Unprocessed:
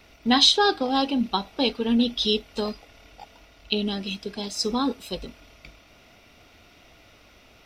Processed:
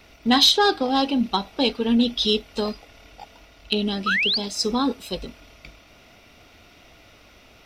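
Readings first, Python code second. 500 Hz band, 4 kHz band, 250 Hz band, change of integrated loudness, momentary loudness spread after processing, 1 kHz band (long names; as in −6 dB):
+2.0 dB, +2.0 dB, +2.0 dB, +2.5 dB, 14 LU, +2.0 dB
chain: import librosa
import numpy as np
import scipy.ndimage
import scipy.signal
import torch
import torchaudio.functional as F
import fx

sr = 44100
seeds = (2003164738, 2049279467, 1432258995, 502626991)

y = 10.0 ** (-8.5 / 20.0) * np.tanh(x / 10.0 ** (-8.5 / 20.0))
y = fx.spec_paint(y, sr, seeds[0], shape='rise', start_s=4.06, length_s=0.32, low_hz=1200.0, high_hz=5000.0, level_db=-24.0)
y = F.gain(torch.from_numpy(y), 2.5).numpy()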